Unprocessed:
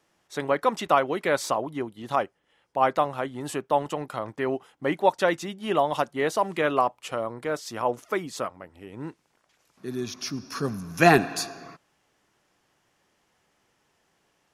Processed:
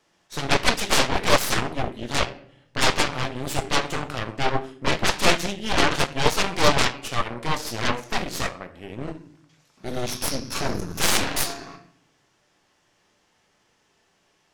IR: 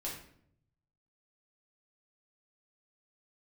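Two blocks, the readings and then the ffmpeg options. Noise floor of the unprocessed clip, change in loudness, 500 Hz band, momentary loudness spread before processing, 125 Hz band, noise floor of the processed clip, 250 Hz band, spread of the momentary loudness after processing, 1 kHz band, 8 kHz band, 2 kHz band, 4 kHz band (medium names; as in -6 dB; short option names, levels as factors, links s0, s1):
-71 dBFS, +2.5 dB, -2.0 dB, 12 LU, +5.0 dB, -66 dBFS, +0.5 dB, 14 LU, -0.5 dB, +11.0 dB, +5.0 dB, +12.5 dB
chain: -filter_complex "[0:a]aeval=exprs='0.708*sin(PI/2*7.94*val(0)/0.708)':c=same,asplit=2[s0][s1];[1:a]atrim=start_sample=2205,lowpass=6800,highshelf=f=3100:g=11[s2];[s1][s2]afir=irnorm=-1:irlink=0,volume=0.891[s3];[s0][s3]amix=inputs=2:normalize=0,aeval=exprs='3.16*(cos(1*acos(clip(val(0)/3.16,-1,1)))-cos(1*PI/2))+1.41*(cos(3*acos(clip(val(0)/3.16,-1,1)))-cos(3*PI/2))+0.708*(cos(4*acos(clip(val(0)/3.16,-1,1)))-cos(4*PI/2))':c=same,volume=0.188"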